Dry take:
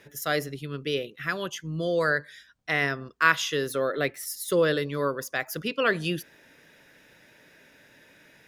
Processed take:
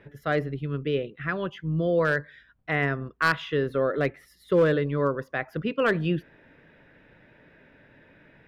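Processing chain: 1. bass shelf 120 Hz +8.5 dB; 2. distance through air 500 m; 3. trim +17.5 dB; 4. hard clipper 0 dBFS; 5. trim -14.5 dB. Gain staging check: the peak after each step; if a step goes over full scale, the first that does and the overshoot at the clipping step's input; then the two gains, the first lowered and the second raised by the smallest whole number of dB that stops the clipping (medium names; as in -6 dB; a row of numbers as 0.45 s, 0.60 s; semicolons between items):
-6.5 dBFS, -10.0 dBFS, +7.5 dBFS, 0.0 dBFS, -14.5 dBFS; step 3, 7.5 dB; step 3 +9.5 dB, step 5 -6.5 dB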